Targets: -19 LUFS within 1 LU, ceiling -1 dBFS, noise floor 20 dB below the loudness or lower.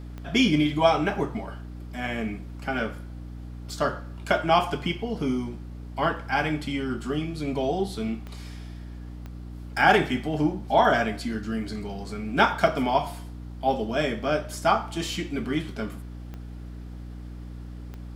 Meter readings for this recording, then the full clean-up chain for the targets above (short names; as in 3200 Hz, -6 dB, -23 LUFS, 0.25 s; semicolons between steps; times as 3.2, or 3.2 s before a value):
clicks 6; hum 60 Hz; harmonics up to 300 Hz; hum level -36 dBFS; loudness -26.0 LUFS; peak -4.0 dBFS; loudness target -19.0 LUFS
-> de-click; notches 60/120/180/240/300 Hz; gain +7 dB; limiter -1 dBFS